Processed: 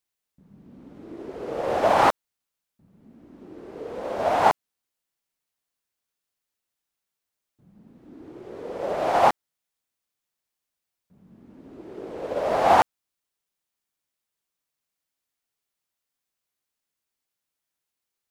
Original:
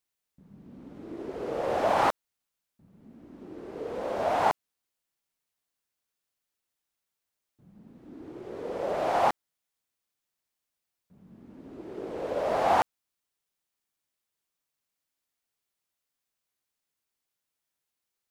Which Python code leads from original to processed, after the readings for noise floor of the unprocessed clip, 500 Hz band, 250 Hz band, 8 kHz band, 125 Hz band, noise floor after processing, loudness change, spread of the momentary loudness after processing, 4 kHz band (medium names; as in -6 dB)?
under -85 dBFS, +4.5 dB, +3.5 dB, +5.5 dB, +4.0 dB, -85 dBFS, +6.0 dB, 21 LU, +5.5 dB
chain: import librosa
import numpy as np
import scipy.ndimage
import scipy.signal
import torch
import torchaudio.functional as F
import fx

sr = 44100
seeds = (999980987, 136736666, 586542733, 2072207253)

y = fx.upward_expand(x, sr, threshold_db=-34.0, expansion=1.5)
y = y * librosa.db_to_amplitude(7.0)